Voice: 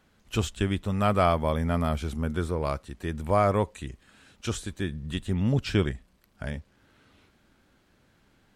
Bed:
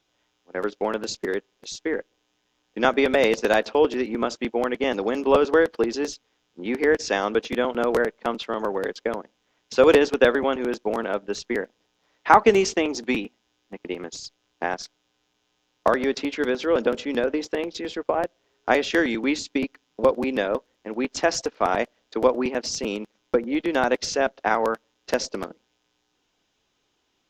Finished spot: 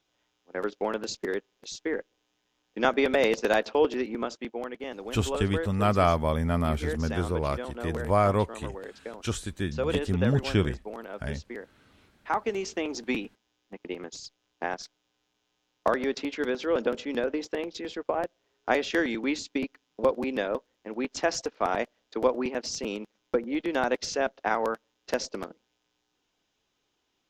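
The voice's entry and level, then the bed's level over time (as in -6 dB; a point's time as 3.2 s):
4.80 s, 0.0 dB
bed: 3.98 s -4 dB
4.85 s -13.5 dB
12.53 s -13.5 dB
12.97 s -5 dB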